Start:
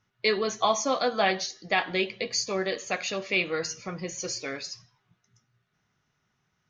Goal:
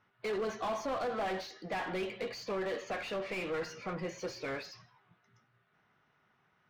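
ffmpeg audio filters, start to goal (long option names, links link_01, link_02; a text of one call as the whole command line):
ffmpeg -i in.wav -filter_complex "[0:a]lowpass=4100,asoftclip=type=hard:threshold=-27.5dB,asplit=2[link_01][link_02];[link_02]highpass=frequency=720:poles=1,volume=18dB,asoftclip=type=tanh:threshold=-27.5dB[link_03];[link_01][link_03]amix=inputs=2:normalize=0,lowpass=frequency=1100:poles=1,volume=-6dB,volume=-2dB" out.wav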